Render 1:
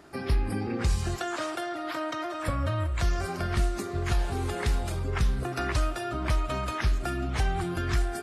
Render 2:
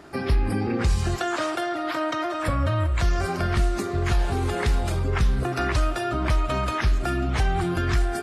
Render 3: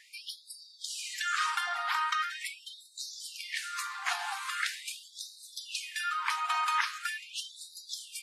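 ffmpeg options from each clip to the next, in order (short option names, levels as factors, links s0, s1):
-filter_complex "[0:a]asplit=2[s0][s1];[s1]alimiter=limit=0.075:level=0:latency=1,volume=1.06[s2];[s0][s2]amix=inputs=2:normalize=0,highshelf=f=6800:g=-5"
-af "afftfilt=real='re*gte(b*sr/1024,710*pow(3700/710,0.5+0.5*sin(2*PI*0.42*pts/sr)))':imag='im*gte(b*sr/1024,710*pow(3700/710,0.5+0.5*sin(2*PI*0.42*pts/sr)))':win_size=1024:overlap=0.75"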